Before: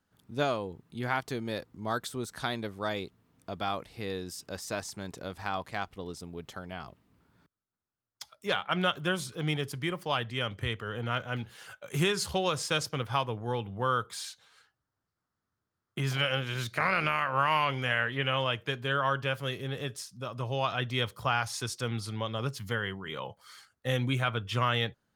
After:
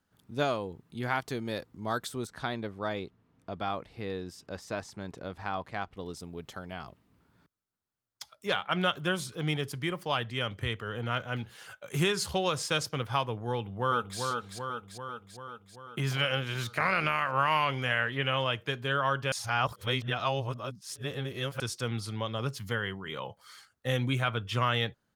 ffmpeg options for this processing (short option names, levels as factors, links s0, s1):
-filter_complex "[0:a]asettb=1/sr,asplit=3[s0][s1][s2];[s0]atrim=end=2.274[s3];[s1]atrim=start=2.27:end=5.97,asetpts=PTS-STARTPTS,afade=t=in:d=0.004:c=qsin,afade=t=out:st=3.696:d=0.004:c=qsin,lowpass=f=2500:p=1[s4];[s2]atrim=start=5.966[s5];[s3][s4]acrossfade=d=0.004:c1=hsin:c2=qsin[s6];[s6][s5]acrossfade=d=0.004:c1=qsin:c2=hsin,asplit=2[s7][s8];[s8]afade=t=in:st=13.52:d=0.01,afade=t=out:st=14.19:d=0.01,aecho=0:1:390|780|1170|1560|1950|2340|2730|3120|3510|3900:0.595662|0.38718|0.251667|0.163584|0.106329|0.0691141|0.0449242|0.0292007|0.0189805|0.0123373[s9];[s7][s9]amix=inputs=2:normalize=0,asplit=3[s10][s11][s12];[s10]atrim=end=19.322[s13];[s11]atrim=start=19.318:end=21.602,asetpts=PTS-STARTPTS,areverse[s14];[s12]atrim=start=21.598[s15];[s13][s14]acrossfade=d=0.004:c1=hsin:c2=hsin[s16];[s16][s15]acrossfade=d=0.004:c1=hsin:c2=hsin"